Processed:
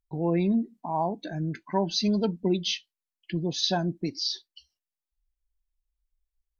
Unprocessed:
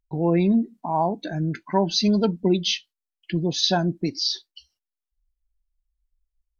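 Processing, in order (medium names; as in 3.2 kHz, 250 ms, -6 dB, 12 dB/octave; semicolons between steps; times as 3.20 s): band-stop 1.4 kHz, Q 12; trim -5 dB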